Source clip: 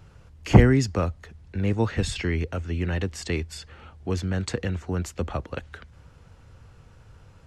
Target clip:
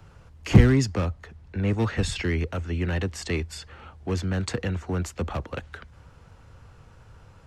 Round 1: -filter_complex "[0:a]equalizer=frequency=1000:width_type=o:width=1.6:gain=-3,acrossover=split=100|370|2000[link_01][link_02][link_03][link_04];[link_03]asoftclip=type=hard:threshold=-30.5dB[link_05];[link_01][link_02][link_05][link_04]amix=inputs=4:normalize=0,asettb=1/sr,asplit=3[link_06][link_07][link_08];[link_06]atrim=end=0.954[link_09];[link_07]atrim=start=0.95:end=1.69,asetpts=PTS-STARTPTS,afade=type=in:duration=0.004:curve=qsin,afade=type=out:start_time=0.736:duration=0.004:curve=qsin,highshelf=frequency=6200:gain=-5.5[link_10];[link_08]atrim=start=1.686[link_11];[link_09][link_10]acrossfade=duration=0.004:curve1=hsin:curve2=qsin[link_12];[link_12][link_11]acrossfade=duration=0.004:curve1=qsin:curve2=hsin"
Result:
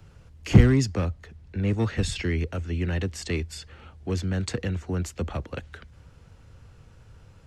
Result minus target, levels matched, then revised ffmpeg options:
1,000 Hz band −3.0 dB
-filter_complex "[0:a]equalizer=frequency=1000:width_type=o:width=1.6:gain=3.5,acrossover=split=100|370|2000[link_01][link_02][link_03][link_04];[link_03]asoftclip=type=hard:threshold=-30.5dB[link_05];[link_01][link_02][link_05][link_04]amix=inputs=4:normalize=0,asettb=1/sr,asplit=3[link_06][link_07][link_08];[link_06]atrim=end=0.954[link_09];[link_07]atrim=start=0.95:end=1.69,asetpts=PTS-STARTPTS,afade=type=in:duration=0.004:curve=qsin,afade=type=out:start_time=0.736:duration=0.004:curve=qsin,highshelf=frequency=6200:gain=-5.5[link_10];[link_08]atrim=start=1.686[link_11];[link_09][link_10]acrossfade=duration=0.004:curve1=hsin:curve2=qsin[link_12];[link_12][link_11]acrossfade=duration=0.004:curve1=qsin:curve2=hsin"

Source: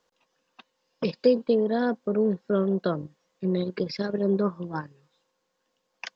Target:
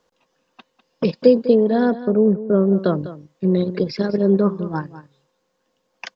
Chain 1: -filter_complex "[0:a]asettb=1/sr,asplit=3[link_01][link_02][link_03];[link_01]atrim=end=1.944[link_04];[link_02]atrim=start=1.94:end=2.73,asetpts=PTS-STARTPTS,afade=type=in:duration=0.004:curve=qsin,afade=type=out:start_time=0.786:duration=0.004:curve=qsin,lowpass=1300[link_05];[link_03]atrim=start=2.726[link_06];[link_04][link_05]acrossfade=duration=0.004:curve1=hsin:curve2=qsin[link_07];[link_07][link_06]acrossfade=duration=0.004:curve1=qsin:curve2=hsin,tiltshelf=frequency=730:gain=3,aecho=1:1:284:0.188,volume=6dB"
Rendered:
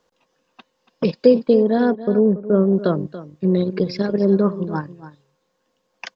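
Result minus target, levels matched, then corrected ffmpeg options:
echo 84 ms late
-filter_complex "[0:a]asettb=1/sr,asplit=3[link_01][link_02][link_03];[link_01]atrim=end=1.944[link_04];[link_02]atrim=start=1.94:end=2.73,asetpts=PTS-STARTPTS,afade=type=in:duration=0.004:curve=qsin,afade=type=out:start_time=0.786:duration=0.004:curve=qsin,lowpass=1300[link_05];[link_03]atrim=start=2.726[link_06];[link_04][link_05]acrossfade=duration=0.004:curve1=hsin:curve2=qsin[link_07];[link_07][link_06]acrossfade=duration=0.004:curve1=qsin:curve2=hsin,tiltshelf=frequency=730:gain=3,aecho=1:1:200:0.188,volume=6dB"

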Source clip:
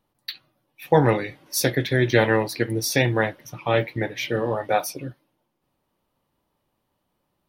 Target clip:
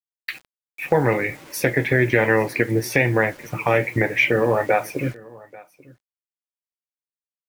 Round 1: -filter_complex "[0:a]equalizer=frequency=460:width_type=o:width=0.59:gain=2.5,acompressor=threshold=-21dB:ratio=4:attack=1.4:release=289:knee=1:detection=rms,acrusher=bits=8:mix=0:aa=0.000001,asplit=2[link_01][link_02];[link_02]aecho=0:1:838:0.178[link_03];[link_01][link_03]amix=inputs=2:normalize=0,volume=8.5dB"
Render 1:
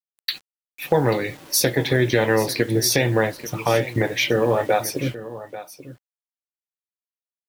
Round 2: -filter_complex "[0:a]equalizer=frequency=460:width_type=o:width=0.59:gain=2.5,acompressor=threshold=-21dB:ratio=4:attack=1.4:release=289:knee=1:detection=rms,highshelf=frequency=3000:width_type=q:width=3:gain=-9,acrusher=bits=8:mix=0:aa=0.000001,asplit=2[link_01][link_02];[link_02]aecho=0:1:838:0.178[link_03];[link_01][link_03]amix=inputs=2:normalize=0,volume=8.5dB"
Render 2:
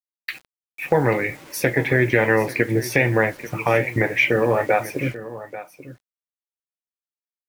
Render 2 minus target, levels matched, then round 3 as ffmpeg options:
echo-to-direct +8 dB
-filter_complex "[0:a]equalizer=frequency=460:width_type=o:width=0.59:gain=2.5,acompressor=threshold=-21dB:ratio=4:attack=1.4:release=289:knee=1:detection=rms,highshelf=frequency=3000:width_type=q:width=3:gain=-9,acrusher=bits=8:mix=0:aa=0.000001,asplit=2[link_01][link_02];[link_02]aecho=0:1:838:0.0708[link_03];[link_01][link_03]amix=inputs=2:normalize=0,volume=8.5dB"

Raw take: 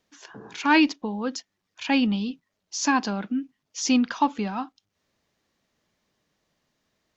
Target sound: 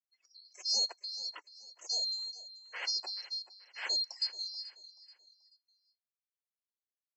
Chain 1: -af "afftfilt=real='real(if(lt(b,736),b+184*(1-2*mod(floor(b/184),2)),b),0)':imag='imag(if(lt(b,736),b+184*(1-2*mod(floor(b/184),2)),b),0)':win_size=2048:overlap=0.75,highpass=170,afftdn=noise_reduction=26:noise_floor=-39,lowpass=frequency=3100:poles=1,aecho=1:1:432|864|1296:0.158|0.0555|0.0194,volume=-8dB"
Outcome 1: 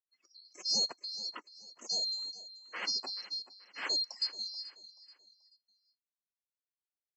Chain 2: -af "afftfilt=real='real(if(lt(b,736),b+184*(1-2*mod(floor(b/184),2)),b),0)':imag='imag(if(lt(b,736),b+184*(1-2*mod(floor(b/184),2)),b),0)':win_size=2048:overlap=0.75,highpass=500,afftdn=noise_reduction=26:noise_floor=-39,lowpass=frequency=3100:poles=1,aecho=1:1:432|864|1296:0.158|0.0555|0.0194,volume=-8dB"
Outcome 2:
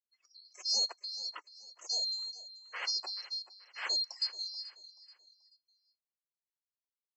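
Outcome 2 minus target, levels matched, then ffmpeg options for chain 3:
1,000 Hz band +3.0 dB
-af "afftfilt=real='real(if(lt(b,736),b+184*(1-2*mod(floor(b/184),2)),b),0)':imag='imag(if(lt(b,736),b+184*(1-2*mod(floor(b/184),2)),b),0)':win_size=2048:overlap=0.75,highpass=500,afftdn=noise_reduction=26:noise_floor=-39,lowpass=frequency=3100:poles=1,equalizer=frequency=1200:width_type=o:width=0.3:gain=-9,aecho=1:1:432|864|1296:0.158|0.0555|0.0194,volume=-8dB"

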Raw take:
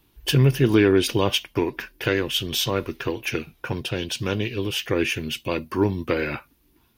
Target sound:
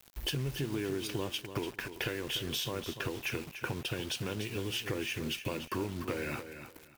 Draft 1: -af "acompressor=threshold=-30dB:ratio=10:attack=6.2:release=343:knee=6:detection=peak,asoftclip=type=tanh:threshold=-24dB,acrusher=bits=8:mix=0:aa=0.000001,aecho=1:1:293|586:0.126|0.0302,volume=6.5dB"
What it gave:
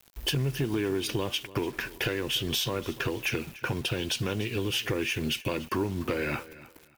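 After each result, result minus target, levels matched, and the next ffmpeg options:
downward compressor: peak gain reduction −7 dB; echo-to-direct −8 dB
-af "acompressor=threshold=-38dB:ratio=10:attack=6.2:release=343:knee=6:detection=peak,asoftclip=type=tanh:threshold=-24dB,acrusher=bits=8:mix=0:aa=0.000001,aecho=1:1:293|586:0.126|0.0302,volume=6.5dB"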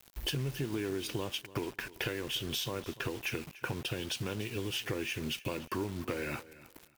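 echo-to-direct −8 dB
-af "acompressor=threshold=-38dB:ratio=10:attack=6.2:release=343:knee=6:detection=peak,asoftclip=type=tanh:threshold=-24dB,acrusher=bits=8:mix=0:aa=0.000001,aecho=1:1:293|586|879:0.316|0.0759|0.0182,volume=6.5dB"

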